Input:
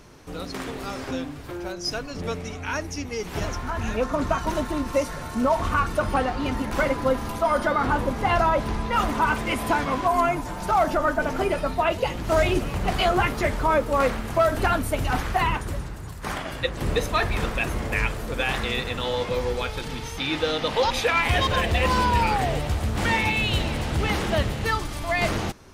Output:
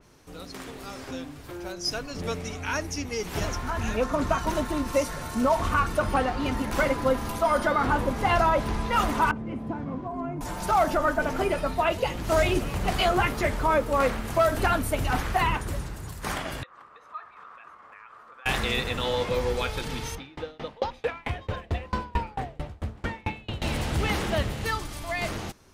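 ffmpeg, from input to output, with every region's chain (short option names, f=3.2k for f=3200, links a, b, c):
-filter_complex "[0:a]asettb=1/sr,asplit=3[a][b][c];[a]atrim=end=9.314[d];[b]atrim=start=9.31:end=10.41,asetpts=PTS-STARTPTS,afade=t=in:d=0.004:c=qsin,afade=t=out:st=1.096:d=0.004:c=qsin,bandpass=f=170:t=q:w=1,asplit=2[e][f];[f]adelay=46,volume=-12.5dB[g];[e][g]amix=inputs=2:normalize=0,atrim=end_sample=48510[h];[c]atrim=start=10.406[i];[d][h]acrossfade=d=0.004:c1=hsin:c2=qsin[j];[j][i]acrossfade=d=0.004:c1=qsin:c2=hsin,asettb=1/sr,asplit=3[k][l][m];[k]atrim=end=16.634[n];[l]atrim=start=16.63:end=18.46,asetpts=PTS-STARTPTS,afade=t=in:d=0.004:c=qsin,afade=t=out:st=1.826:d=0.004:c=qsin,acompressor=threshold=-27dB:ratio=10:attack=3.2:release=140:knee=1:detection=peak,bandpass=f=1.2k:t=q:w=6.3[o];[m]atrim=start=18.456[p];[n][o]acrossfade=d=0.004:c1=hsin:c2=qsin[q];[q][p]acrossfade=d=0.004:c1=qsin:c2=hsin,asettb=1/sr,asplit=3[r][s][t];[r]atrim=end=20.154[u];[s]atrim=start=20.15:end=23.62,asetpts=PTS-STARTPTS,afade=t=in:d=0.004:c=qsin,afade=t=out:st=3.466:d=0.004:c=qsin,lowpass=f=1.3k:p=1,aeval=exprs='val(0)*pow(10,-30*if(lt(mod(4.5*n/s,1),2*abs(4.5)/1000),1-mod(4.5*n/s,1)/(2*abs(4.5)/1000),(mod(4.5*n/s,1)-2*abs(4.5)/1000)/(1-2*abs(4.5)/1000))/20)':c=same[v];[t]atrim=start=23.616[w];[u][v]acrossfade=d=0.004:c1=hsin:c2=qsin[x];[x][w]acrossfade=d=0.004:c1=qsin:c2=hsin,highshelf=f=4.6k:g=5.5,dynaudnorm=f=400:g=9:m=8dB,adynamicequalizer=threshold=0.0316:dfrequency=3300:dqfactor=0.7:tfrequency=3300:tqfactor=0.7:attack=5:release=100:ratio=0.375:range=2:mode=cutabove:tftype=highshelf,volume=-8dB"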